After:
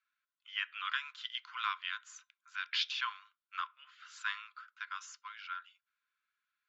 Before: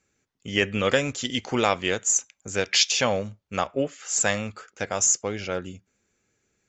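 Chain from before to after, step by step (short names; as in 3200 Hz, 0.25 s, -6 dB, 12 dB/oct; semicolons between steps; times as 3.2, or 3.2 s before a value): rippled Chebyshev high-pass 1000 Hz, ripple 9 dB; air absorption 370 m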